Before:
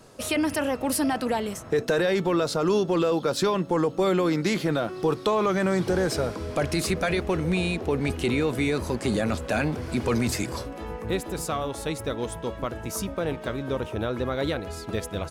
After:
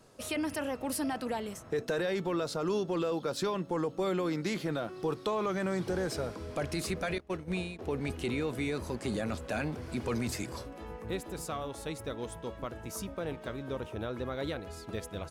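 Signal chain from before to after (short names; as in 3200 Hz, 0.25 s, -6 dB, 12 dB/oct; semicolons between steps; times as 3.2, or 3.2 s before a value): 7.18–7.79 gate -24 dBFS, range -20 dB; gain -8.5 dB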